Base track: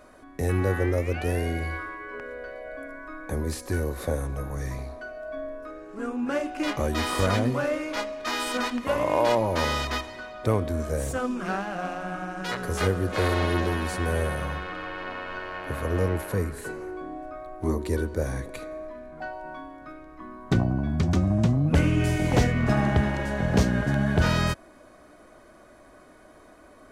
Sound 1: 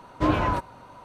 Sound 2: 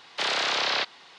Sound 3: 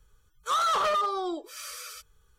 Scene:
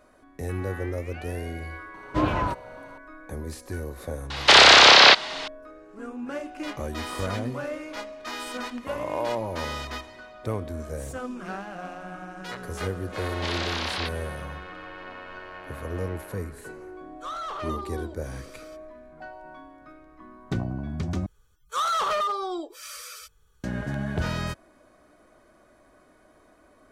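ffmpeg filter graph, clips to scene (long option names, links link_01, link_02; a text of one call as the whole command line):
ffmpeg -i bed.wav -i cue0.wav -i cue1.wav -i cue2.wav -filter_complex "[2:a]asplit=2[link_01][link_02];[3:a]asplit=2[link_03][link_04];[0:a]volume=-6dB[link_05];[link_01]alimiter=level_in=18dB:limit=-1dB:release=50:level=0:latency=1[link_06];[link_02]lowpass=10000[link_07];[link_03]lowpass=frequency=3600:poles=1[link_08];[link_05]asplit=2[link_09][link_10];[link_09]atrim=end=21.264[link_11];[link_04]atrim=end=2.38[link_12];[link_10]atrim=start=23.636[link_13];[1:a]atrim=end=1.04,asetpts=PTS-STARTPTS,volume=-1.5dB,afade=type=in:duration=0.004:curve=hsin,afade=type=out:start_time=1.036:duration=0.004:curve=hsin,adelay=1940[link_14];[link_06]atrim=end=1.18,asetpts=PTS-STARTPTS,volume=-1dB,afade=type=in:duration=0.004:curve=hsin,afade=type=out:start_time=1.176:duration=0.004:curve=hsin,adelay=4300[link_15];[link_07]atrim=end=1.18,asetpts=PTS-STARTPTS,volume=-5.5dB,afade=type=in:duration=0.004:curve=hsin,afade=type=out:start_time=1.176:duration=0.004:curve=hsin,adelay=13240[link_16];[link_08]atrim=end=2.38,asetpts=PTS-STARTPTS,volume=-8.5dB,afade=type=in:duration=0.004:curve=hsin,afade=type=out:start_time=2.376:duration=0.004:curve=hsin,adelay=16750[link_17];[link_11][link_12]acrossfade=duration=0.004:curve1=hsin:curve2=hsin[link_18];[link_18][link_13]acrossfade=duration=0.004:curve1=hsin:curve2=hsin[link_19];[link_19][link_14][link_15][link_16][link_17]amix=inputs=5:normalize=0" out.wav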